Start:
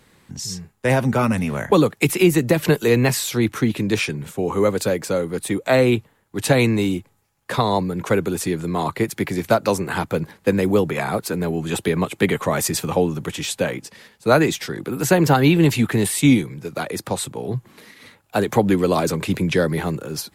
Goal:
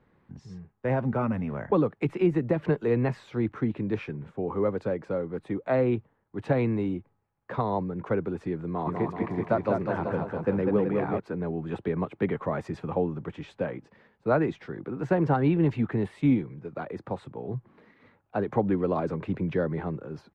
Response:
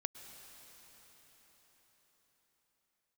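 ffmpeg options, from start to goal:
-filter_complex "[0:a]lowpass=1400,asplit=3[link_01][link_02][link_03];[link_01]afade=type=out:start_time=8.86:duration=0.02[link_04];[link_02]aecho=1:1:200|380|542|687.8|819:0.631|0.398|0.251|0.158|0.1,afade=type=in:start_time=8.86:duration=0.02,afade=type=out:start_time=11.18:duration=0.02[link_05];[link_03]afade=type=in:start_time=11.18:duration=0.02[link_06];[link_04][link_05][link_06]amix=inputs=3:normalize=0,volume=-8dB"

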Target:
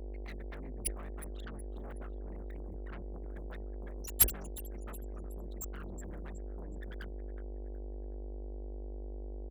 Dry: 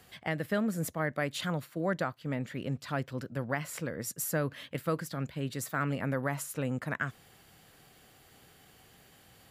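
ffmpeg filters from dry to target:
ffmpeg -i in.wav -filter_complex "[0:a]acrossover=split=320[link_01][link_02];[link_02]acompressor=threshold=-42dB:ratio=4[link_03];[link_01][link_03]amix=inputs=2:normalize=0,afftfilt=real='re*gte(hypot(re,im),0.0282)':imag='im*gte(hypot(re,im),0.0282)':win_size=1024:overlap=0.75,tiltshelf=frequency=940:gain=-9,aecho=1:1:369|738|1107:0.15|0.0494|0.0163,aphaser=in_gain=1:out_gain=1:delay=2.5:decay=0.23:speed=0.67:type=sinusoidal,aexciter=amount=11.9:drive=8.9:freq=6000,aeval=exprs='val(0)+0.0316*(sin(2*PI*50*n/s)+sin(2*PI*2*50*n/s)/2+sin(2*PI*3*50*n/s)/3+sin(2*PI*4*50*n/s)/4+sin(2*PI*5*50*n/s)/5)':channel_layout=same,asplit=2[link_04][link_05];[link_05]aeval=exprs='0.2*sin(PI/2*8.91*val(0)/0.2)':channel_layout=same,volume=-7.5dB[link_06];[link_04][link_06]amix=inputs=2:normalize=0,agate=range=-33dB:threshold=-9dB:ratio=3:detection=peak,volume=2.5dB" out.wav

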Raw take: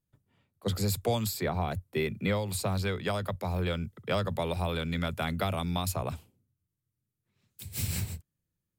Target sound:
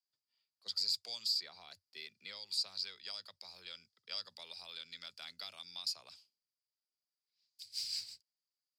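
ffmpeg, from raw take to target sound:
ffmpeg -i in.wav -af "bandpass=frequency=4800:width_type=q:width=13:csg=0,volume=12.5dB" out.wav

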